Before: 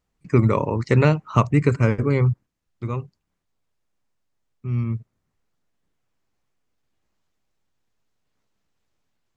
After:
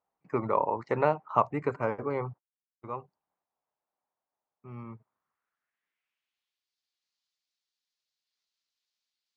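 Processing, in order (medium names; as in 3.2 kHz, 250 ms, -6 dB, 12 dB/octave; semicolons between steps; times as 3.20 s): band-pass sweep 810 Hz -> 4.4 kHz, 4.86–6.72 s; 1.28–2.94 s: gate -47 dBFS, range -35 dB; trim +2.5 dB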